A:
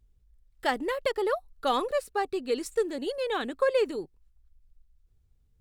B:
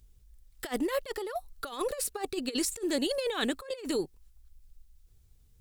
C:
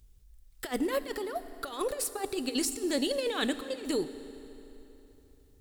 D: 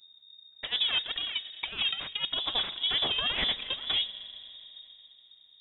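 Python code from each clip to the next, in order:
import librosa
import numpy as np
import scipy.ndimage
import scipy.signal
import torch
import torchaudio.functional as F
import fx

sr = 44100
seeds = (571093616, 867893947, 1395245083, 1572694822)

y1 = fx.high_shelf(x, sr, hz=3400.0, db=11.5)
y1 = fx.over_compress(y1, sr, threshold_db=-31.0, ratio=-0.5)
y2 = fx.rev_fdn(y1, sr, rt60_s=3.4, lf_ratio=1.0, hf_ratio=0.85, size_ms=22.0, drr_db=11.5)
y3 = fx.cheby_harmonics(y2, sr, harmonics=(8,), levels_db=(-15,), full_scale_db=-15.5)
y3 = fx.freq_invert(y3, sr, carrier_hz=3700)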